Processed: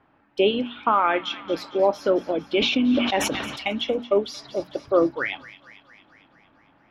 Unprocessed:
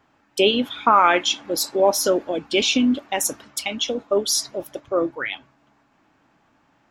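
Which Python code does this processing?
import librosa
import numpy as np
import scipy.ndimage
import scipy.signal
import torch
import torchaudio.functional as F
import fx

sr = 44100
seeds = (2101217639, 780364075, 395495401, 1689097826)

y = fx.hum_notches(x, sr, base_hz=60, count=4)
y = fx.echo_wet_highpass(y, sr, ms=227, feedback_pct=64, hz=1900.0, wet_db=-14.0)
y = fx.rider(y, sr, range_db=4, speed_s=0.5)
y = fx.air_absorb(y, sr, metres=350.0)
y = fx.sustainer(y, sr, db_per_s=38.0, at=(2.53, 3.63))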